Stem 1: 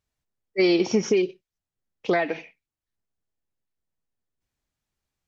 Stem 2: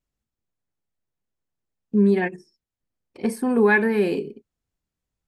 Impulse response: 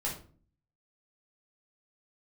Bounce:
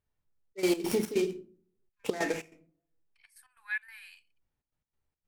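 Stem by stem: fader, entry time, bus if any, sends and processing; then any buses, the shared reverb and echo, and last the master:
-4.0 dB, 0.00 s, send -7 dB, high shelf 5200 Hz -3.5 dB; compressor 2.5:1, threshold -24 dBFS, peak gain reduction 6 dB; noise-modulated delay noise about 3800 Hz, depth 0.032 ms
-12.0 dB, 0.00 s, no send, inverse Chebyshev high-pass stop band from 460 Hz, stop band 60 dB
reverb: on, RT60 0.45 s, pre-delay 7 ms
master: high shelf 9400 Hz +8 dB; step gate "xxxxx.x.xx.xx" 143 bpm -12 dB; mismatched tape noise reduction decoder only

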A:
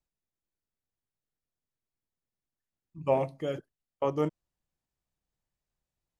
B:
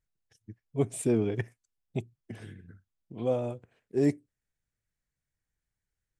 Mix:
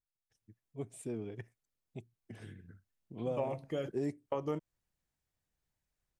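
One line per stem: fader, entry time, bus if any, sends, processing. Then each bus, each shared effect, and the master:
-1.0 dB, 0.30 s, no send, dry
2.07 s -13.5 dB -> 2.44 s -4 dB, 0.00 s, no send, dry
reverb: off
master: compressor 5:1, threshold -32 dBFS, peak gain reduction 10.5 dB

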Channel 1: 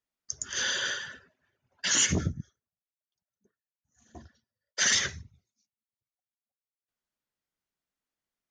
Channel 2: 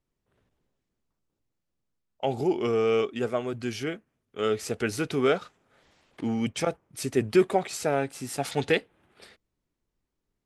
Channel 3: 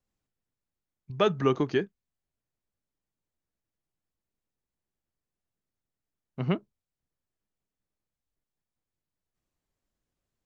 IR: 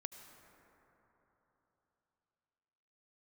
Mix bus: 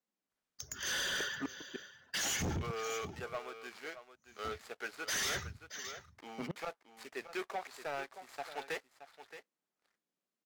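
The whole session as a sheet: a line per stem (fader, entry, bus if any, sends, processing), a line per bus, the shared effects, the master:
-2.0 dB, 0.30 s, no send, echo send -18 dB, dry
-10.5 dB, 0.00 s, no send, echo send -12.5 dB, median filter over 15 samples; HPF 970 Hz 12 dB/oct; sample leveller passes 2
-5.0 dB, 0.00 s, no send, no echo send, steep high-pass 170 Hz 48 dB/oct; flipped gate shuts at -17 dBFS, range -35 dB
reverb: off
echo: echo 0.623 s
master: hard clip -32.5 dBFS, distortion -5 dB; decimation joined by straight lines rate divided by 2×

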